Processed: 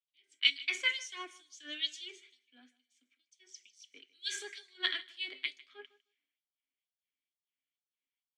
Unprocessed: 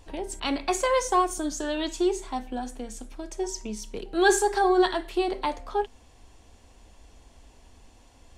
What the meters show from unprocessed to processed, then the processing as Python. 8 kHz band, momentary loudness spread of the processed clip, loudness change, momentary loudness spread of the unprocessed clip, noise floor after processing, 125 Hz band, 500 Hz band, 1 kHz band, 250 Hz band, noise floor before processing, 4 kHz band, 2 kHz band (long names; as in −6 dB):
−15.0 dB, 19 LU, −8.0 dB, 15 LU, below −85 dBFS, can't be measured, −30.0 dB, −28.0 dB, −30.0 dB, −55 dBFS, +2.0 dB, −5.0 dB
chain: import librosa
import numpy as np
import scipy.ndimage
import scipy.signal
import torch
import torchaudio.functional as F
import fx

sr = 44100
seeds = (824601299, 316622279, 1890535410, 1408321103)

p1 = fx.dynamic_eq(x, sr, hz=5800.0, q=6.0, threshold_db=-51.0, ratio=4.0, max_db=5)
p2 = fx.filter_lfo_highpass(p1, sr, shape='sine', hz=2.2, low_hz=940.0, high_hz=5600.0, q=1.3)
p3 = fx.vowel_filter(p2, sr, vowel='i')
p4 = p3 + fx.echo_feedback(p3, sr, ms=154, feedback_pct=25, wet_db=-16, dry=0)
p5 = fx.band_widen(p4, sr, depth_pct=100)
y = F.gain(torch.from_numpy(p5), 7.5).numpy()